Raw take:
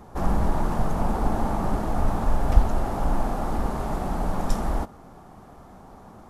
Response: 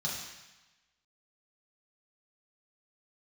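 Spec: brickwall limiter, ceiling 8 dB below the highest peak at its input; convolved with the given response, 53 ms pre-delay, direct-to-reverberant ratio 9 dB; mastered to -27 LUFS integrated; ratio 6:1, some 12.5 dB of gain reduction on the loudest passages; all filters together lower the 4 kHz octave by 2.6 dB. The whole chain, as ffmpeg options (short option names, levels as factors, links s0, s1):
-filter_complex "[0:a]equalizer=f=4000:t=o:g=-3.5,acompressor=threshold=0.0708:ratio=6,alimiter=limit=0.075:level=0:latency=1,asplit=2[s0][s1];[1:a]atrim=start_sample=2205,adelay=53[s2];[s1][s2]afir=irnorm=-1:irlink=0,volume=0.211[s3];[s0][s3]amix=inputs=2:normalize=0,volume=2.11"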